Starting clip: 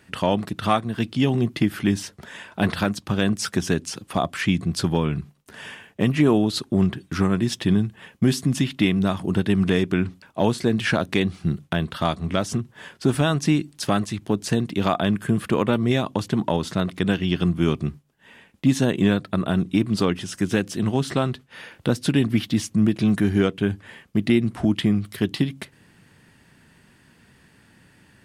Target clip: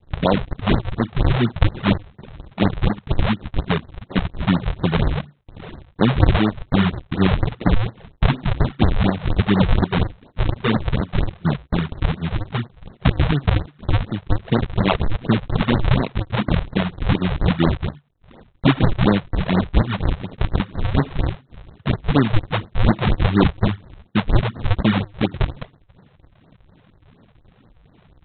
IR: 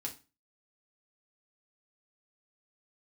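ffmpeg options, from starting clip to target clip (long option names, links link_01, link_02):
-af "highpass=frequency=83:width=0.5412,highpass=frequency=83:width=1.3066,aresample=8000,acrusher=samples=22:mix=1:aa=0.000001:lfo=1:lforange=35.2:lforate=2.6,aresample=44100,afftfilt=real='re*(1-between(b*sr/1024,240*pow(3000/240,0.5+0.5*sin(2*PI*4.2*pts/sr))/1.41,240*pow(3000/240,0.5+0.5*sin(2*PI*4.2*pts/sr))*1.41))':imag='im*(1-between(b*sr/1024,240*pow(3000/240,0.5+0.5*sin(2*PI*4.2*pts/sr))/1.41,240*pow(3000/240,0.5+0.5*sin(2*PI*4.2*pts/sr))*1.41))':win_size=1024:overlap=0.75,volume=4dB"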